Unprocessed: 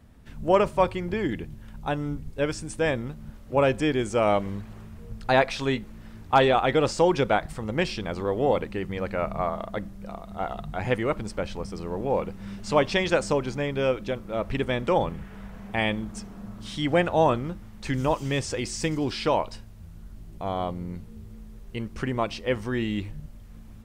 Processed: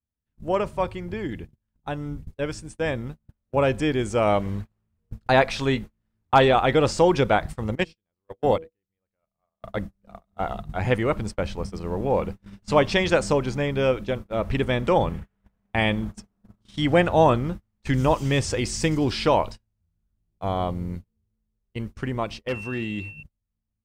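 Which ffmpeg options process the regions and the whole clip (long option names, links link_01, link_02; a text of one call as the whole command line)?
ffmpeg -i in.wav -filter_complex "[0:a]asettb=1/sr,asplit=3[link_01][link_02][link_03];[link_01]atrim=end=7.754[link_04];[link_02]atrim=start=7.75:end=9.62,asetpts=PTS-STARTPTS,afade=type=in:duration=0.004:curve=qsin,afade=type=out:start_time=1.866:duration=0.004:curve=qsin,agate=range=-22dB:threshold=-23dB:ratio=16:release=100:detection=peak,highshelf=frequency=4700:gain=4,bandreject=frequency=161.8:width_type=h:width=4,bandreject=frequency=323.6:width_type=h:width=4,bandreject=frequency=485.4:width_type=h:width=4,bandreject=frequency=647.2:width_type=h:width=4[link_05];[link_03]atrim=start=9.616[link_06];[link_04][link_05]acrossfade=duration=0.004:curve1=hsin:curve2=qsin[link_07];[link_07][link_06]acrossfade=duration=0.004:curve1=qsin:curve2=hsin,asettb=1/sr,asplit=3[link_08][link_09][link_10];[link_08]atrim=end=22.484[link_11];[link_09]atrim=start=22.48:end=23.23,asetpts=PTS-STARTPTS,afade=type=in:duration=0.004:curve=qsin,afade=type=out:start_time=0.746:duration=0.004:curve=qsin,highpass=92,volume=19.5dB,asoftclip=hard,volume=-19.5dB,aeval=exprs='val(0)+0.0224*sin(2*PI*2700*n/s)':channel_layout=same[link_12];[link_10]atrim=start=23.226[link_13];[link_11][link_12]acrossfade=duration=0.004:curve1=hsin:curve2=qsin[link_14];[link_14][link_13]acrossfade=duration=0.004:curve1=qsin:curve2=hsin,agate=range=-36dB:threshold=-34dB:ratio=16:detection=peak,equalizer=frequency=79:width_type=o:width=1.3:gain=5.5,dynaudnorm=framelen=540:gausssize=13:maxgain=11.5dB,volume=-4dB" out.wav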